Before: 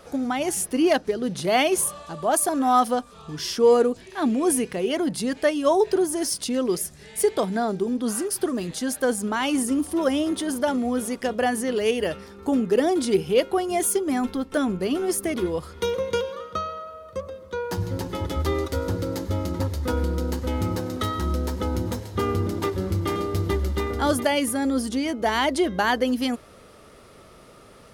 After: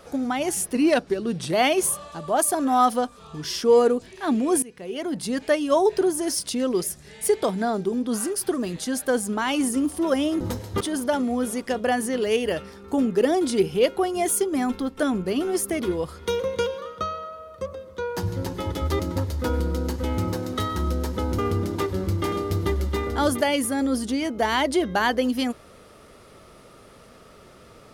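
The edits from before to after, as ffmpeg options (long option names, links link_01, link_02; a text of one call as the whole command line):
ffmpeg -i in.wav -filter_complex "[0:a]asplit=8[link_01][link_02][link_03][link_04][link_05][link_06][link_07][link_08];[link_01]atrim=end=0.754[link_09];[link_02]atrim=start=0.75:end=1.48,asetpts=PTS-STARTPTS,asetrate=41013,aresample=44100,atrim=end_sample=34616,asetpts=PTS-STARTPTS[link_10];[link_03]atrim=start=1.476:end=4.57,asetpts=PTS-STARTPTS,afade=type=out:start_time=3.09:duration=0.004:curve=hsin:silence=0.0891251[link_11];[link_04]atrim=start=4.57:end=10.352,asetpts=PTS-STARTPTS,afade=type=in:duration=0.76:silence=0.0891251[link_12];[link_05]atrim=start=21.818:end=22.222[link_13];[link_06]atrim=start=10.348:end=18.542[link_14];[link_07]atrim=start=19.428:end=21.822[link_15];[link_08]atrim=start=22.218[link_16];[link_09][link_10]acrossfade=duration=0.004:curve1=hsin:curve2=hsin[link_17];[link_11][link_12]concat=n=2:v=0:a=1[link_18];[link_17][link_18]acrossfade=duration=0.004:curve1=hsin:curve2=hsin[link_19];[link_19][link_13]acrossfade=duration=0.004:curve1=hsin:curve2=hsin[link_20];[link_20][link_14]acrossfade=duration=0.004:curve1=hsin:curve2=hsin[link_21];[link_21][link_15]acrossfade=duration=0.004:curve1=hsin:curve2=hsin[link_22];[link_22][link_16]acrossfade=duration=0.004:curve1=hsin:curve2=hsin" out.wav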